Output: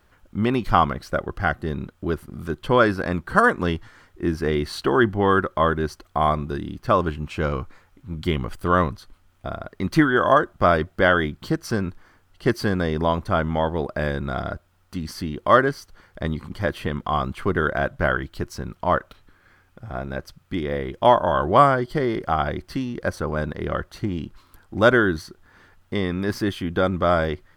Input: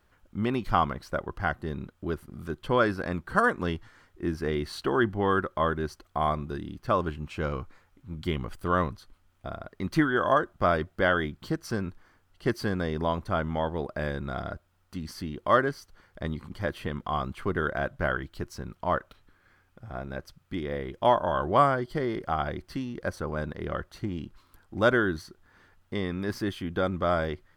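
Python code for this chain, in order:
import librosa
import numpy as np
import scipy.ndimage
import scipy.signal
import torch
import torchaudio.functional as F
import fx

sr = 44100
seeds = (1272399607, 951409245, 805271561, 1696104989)

y = fx.notch(x, sr, hz=960.0, q=5.7, at=(0.9, 1.67))
y = y * librosa.db_to_amplitude(6.5)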